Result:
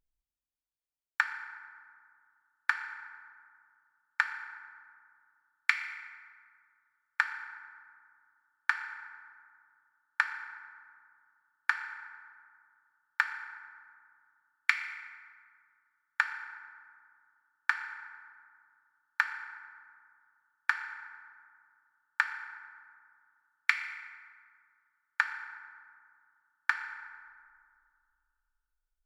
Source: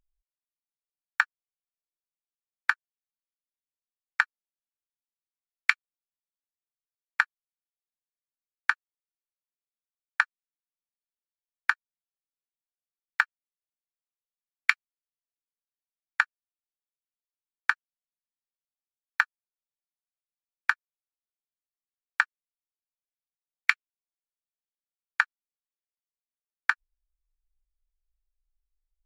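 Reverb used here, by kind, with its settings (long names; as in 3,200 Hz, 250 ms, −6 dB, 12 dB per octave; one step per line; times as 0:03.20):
feedback delay network reverb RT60 2.2 s, low-frequency decay 1.3×, high-frequency decay 0.45×, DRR 5 dB
level −4.5 dB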